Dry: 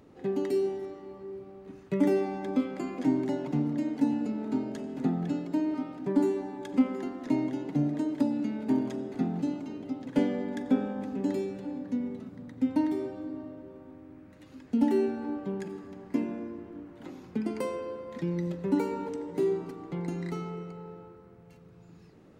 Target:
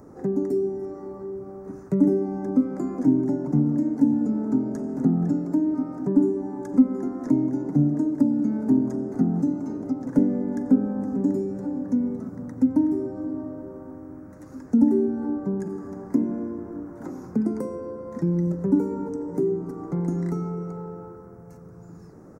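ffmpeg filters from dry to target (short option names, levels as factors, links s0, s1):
-filter_complex "[0:a]firequalizer=gain_entry='entry(1400,0);entry(3000,-27);entry(5600,0)':delay=0.05:min_phase=1,acrossover=split=350[s0][s1];[s1]acompressor=threshold=0.00501:ratio=6[s2];[s0][s2]amix=inputs=2:normalize=0,volume=2.82"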